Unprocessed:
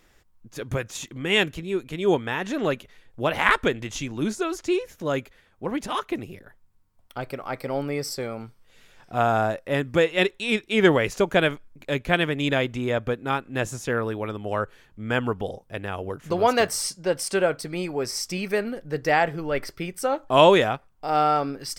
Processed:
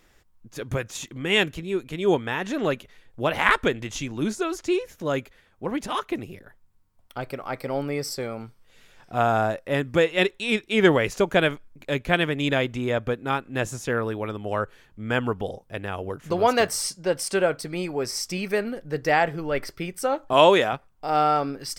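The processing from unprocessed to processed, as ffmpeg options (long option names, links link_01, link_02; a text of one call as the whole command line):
ffmpeg -i in.wav -filter_complex "[0:a]asettb=1/sr,asplit=3[link_01][link_02][link_03];[link_01]atrim=end=20.334[link_04];[link_02]atrim=start=20.33:end=20.73,asetpts=PTS-STARTPTS,afade=type=in:duration=0.004:curve=qsin,afade=type=out:start_time=0.396:duration=0.004:curve=qsin,highpass=frequency=240:poles=1[link_05];[link_03]atrim=start=20.726[link_06];[link_04][link_05]acrossfade=duration=0.004:curve1=hsin:curve2=qsin[link_07];[link_07][link_06]acrossfade=duration=0.004:curve1=qsin:curve2=hsin" out.wav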